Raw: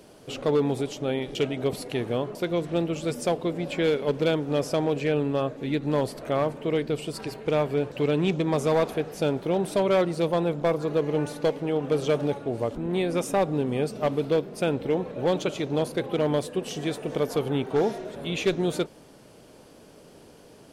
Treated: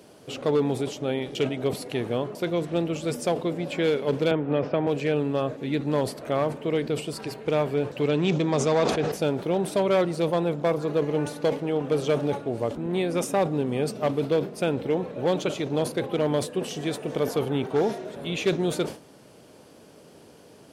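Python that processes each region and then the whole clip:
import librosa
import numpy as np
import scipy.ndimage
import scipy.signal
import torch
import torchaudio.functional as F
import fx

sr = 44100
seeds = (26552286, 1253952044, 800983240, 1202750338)

y = fx.chain(x, sr, fx.lowpass(hz=2800.0, slope=24),
    fx.band_squash(depth_pct=70), at=(4.31, 4.87))
y = fx.chain(y, sr, fx.lowpass(hz=7200.0, slope=24),
    fx.high_shelf(hz=5300.0, db=7.0),
    fx.sustainer(db_per_s=43.0), at=(8.09, 9.12))
y = scipy.signal.sosfilt(scipy.signal.butter(2, 75.0, 'highpass', fs=sr, output='sos'), y)
y = fx.sustainer(y, sr, db_per_s=150.0)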